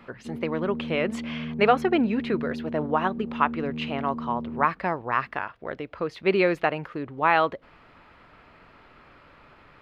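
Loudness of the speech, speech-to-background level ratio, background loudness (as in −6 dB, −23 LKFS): −26.5 LKFS, 8.5 dB, −35.0 LKFS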